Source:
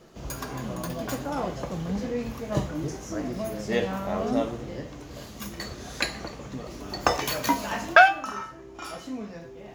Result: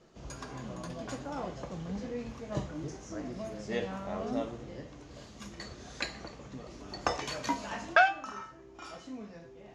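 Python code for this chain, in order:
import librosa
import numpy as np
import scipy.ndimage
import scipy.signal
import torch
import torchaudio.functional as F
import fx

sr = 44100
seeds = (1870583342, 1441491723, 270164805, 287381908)

y = scipy.signal.sosfilt(scipy.signal.butter(4, 8100.0, 'lowpass', fs=sr, output='sos'), x)
y = y * librosa.db_to_amplitude(-8.0)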